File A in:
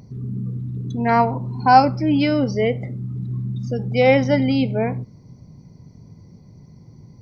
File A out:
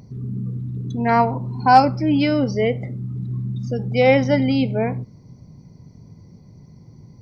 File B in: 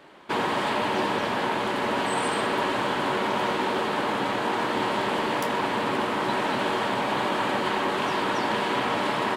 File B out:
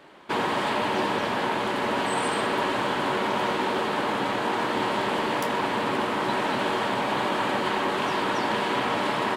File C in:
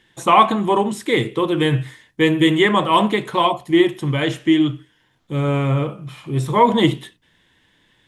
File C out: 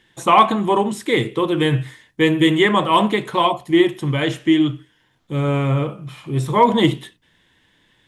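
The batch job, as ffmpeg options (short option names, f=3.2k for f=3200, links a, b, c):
-af "asoftclip=type=hard:threshold=-3dB"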